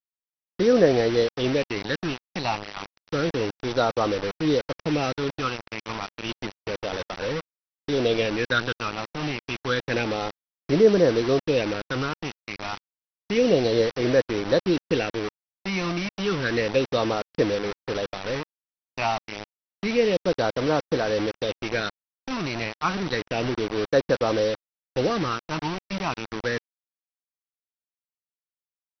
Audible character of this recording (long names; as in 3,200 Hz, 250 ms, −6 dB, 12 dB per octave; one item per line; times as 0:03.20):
phaser sweep stages 8, 0.3 Hz, lowest notch 450–3,100 Hz
a quantiser's noise floor 6 bits, dither none
MP2